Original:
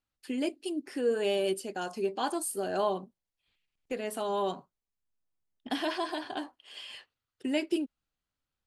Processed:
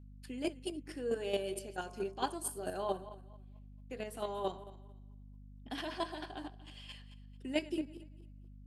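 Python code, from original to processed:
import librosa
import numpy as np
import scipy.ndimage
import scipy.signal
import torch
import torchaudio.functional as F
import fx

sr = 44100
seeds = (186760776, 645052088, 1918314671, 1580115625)

y = fx.reverse_delay_fb(x, sr, ms=119, feedback_pct=47, wet_db=-13.0)
y = fx.chopper(y, sr, hz=4.5, depth_pct=60, duty_pct=15)
y = fx.add_hum(y, sr, base_hz=50, snr_db=12)
y = y * 10.0 ** (-2.0 / 20.0)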